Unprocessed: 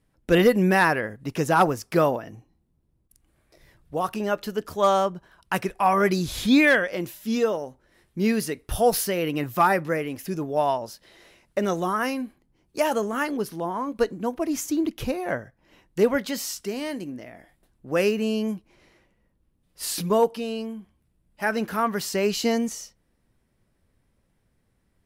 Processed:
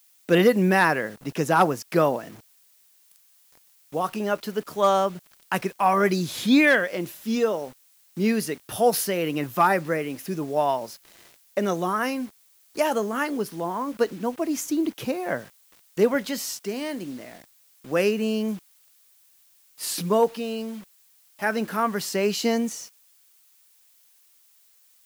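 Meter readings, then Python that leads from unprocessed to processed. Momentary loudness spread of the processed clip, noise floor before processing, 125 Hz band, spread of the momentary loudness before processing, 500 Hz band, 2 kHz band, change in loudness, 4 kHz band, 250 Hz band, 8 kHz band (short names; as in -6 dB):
13 LU, -70 dBFS, -0.5 dB, 13 LU, 0.0 dB, 0.0 dB, 0.0 dB, 0.0 dB, 0.0 dB, 0.0 dB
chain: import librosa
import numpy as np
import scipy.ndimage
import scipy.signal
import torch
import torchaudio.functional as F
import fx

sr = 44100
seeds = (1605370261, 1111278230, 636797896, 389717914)

y = scipy.signal.sosfilt(scipy.signal.butter(4, 130.0, 'highpass', fs=sr, output='sos'), x)
y = fx.quant_dither(y, sr, seeds[0], bits=8, dither='none')
y = fx.dmg_noise_colour(y, sr, seeds[1], colour='blue', level_db=-59.0)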